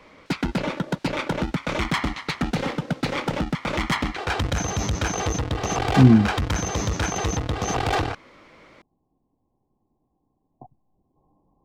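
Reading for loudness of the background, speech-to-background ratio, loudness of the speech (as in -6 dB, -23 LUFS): -26.0 LUFS, 8.0 dB, -18.0 LUFS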